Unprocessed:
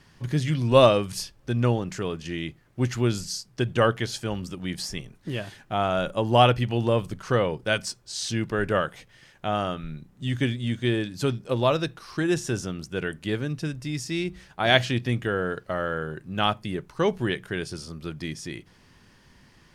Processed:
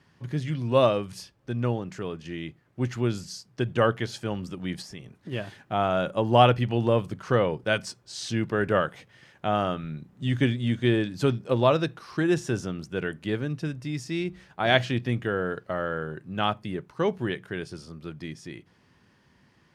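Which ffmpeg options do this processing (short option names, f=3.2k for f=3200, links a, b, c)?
-filter_complex "[0:a]asplit=3[a][b][c];[a]afade=t=out:st=4.81:d=0.02[d];[b]acompressor=threshold=-36dB:ratio=3:attack=3.2:release=140:knee=1:detection=peak,afade=t=in:st=4.81:d=0.02,afade=t=out:st=5.31:d=0.02[e];[c]afade=t=in:st=5.31:d=0.02[f];[d][e][f]amix=inputs=3:normalize=0,highpass=83,highshelf=f=3.9k:g=-8.5,dynaudnorm=f=350:g=17:m=11.5dB,volume=-4dB"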